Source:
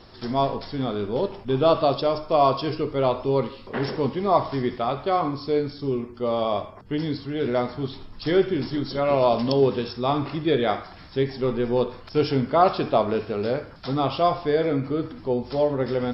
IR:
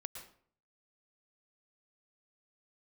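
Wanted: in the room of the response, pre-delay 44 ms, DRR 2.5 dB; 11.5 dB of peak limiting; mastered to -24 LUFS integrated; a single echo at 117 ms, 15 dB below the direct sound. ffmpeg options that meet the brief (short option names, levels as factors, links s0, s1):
-filter_complex "[0:a]alimiter=limit=0.15:level=0:latency=1,aecho=1:1:117:0.178,asplit=2[s0][s1];[1:a]atrim=start_sample=2205,adelay=44[s2];[s1][s2]afir=irnorm=-1:irlink=0,volume=1.06[s3];[s0][s3]amix=inputs=2:normalize=0,volume=1.12"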